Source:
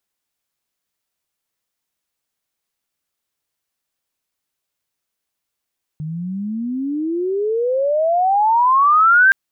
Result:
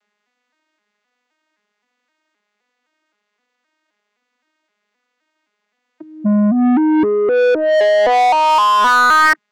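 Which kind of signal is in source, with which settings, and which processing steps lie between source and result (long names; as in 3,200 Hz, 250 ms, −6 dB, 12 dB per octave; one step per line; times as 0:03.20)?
glide logarithmic 150 Hz → 1,600 Hz −23.5 dBFS → −7.5 dBFS 3.32 s
vocoder with an arpeggio as carrier minor triad, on G#3, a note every 260 ms
parametric band 1,900 Hz +5.5 dB 0.81 octaves
mid-hump overdrive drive 27 dB, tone 2,600 Hz, clips at −6.5 dBFS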